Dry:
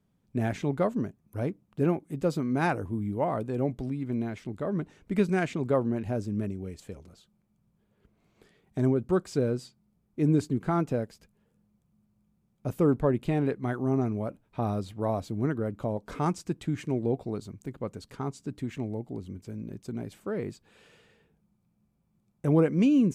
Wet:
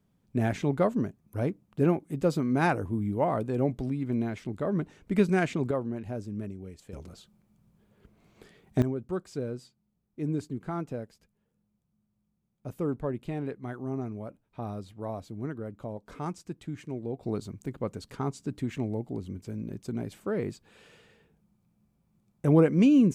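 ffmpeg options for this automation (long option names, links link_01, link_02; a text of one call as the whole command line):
ffmpeg -i in.wav -af "asetnsamples=nb_out_samples=441:pad=0,asendcmd='5.71 volume volume -5dB;6.93 volume volume 6dB;8.82 volume volume -7dB;17.23 volume volume 2dB',volume=1.5dB" out.wav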